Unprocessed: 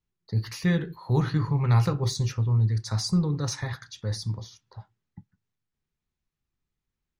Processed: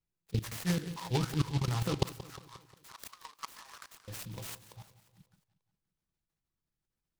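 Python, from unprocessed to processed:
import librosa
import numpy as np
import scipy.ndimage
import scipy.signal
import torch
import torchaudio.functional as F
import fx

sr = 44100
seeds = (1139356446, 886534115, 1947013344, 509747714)

y = x + 0.38 * np.pad(x, (int(6.1 * sr / 1000.0), 0))[:len(x)]
y = fx.hpss(y, sr, part='percussive', gain_db=8)
y = fx.level_steps(y, sr, step_db=23)
y = fx.auto_swell(y, sr, attack_ms=117.0)
y = fx.over_compress(y, sr, threshold_db=-29.0, ratio=-1.0)
y = fx.ladder_highpass(y, sr, hz=980.0, resonance_pct=70, at=(2.03, 4.08))
y = fx.echo_feedback(y, sr, ms=178, feedback_pct=54, wet_db=-15.5)
y = fx.noise_mod_delay(y, sr, seeds[0], noise_hz=3300.0, depth_ms=0.1)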